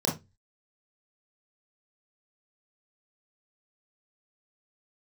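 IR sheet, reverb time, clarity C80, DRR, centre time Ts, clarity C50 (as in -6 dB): 0.20 s, 19.0 dB, -3.5 dB, 27 ms, 9.5 dB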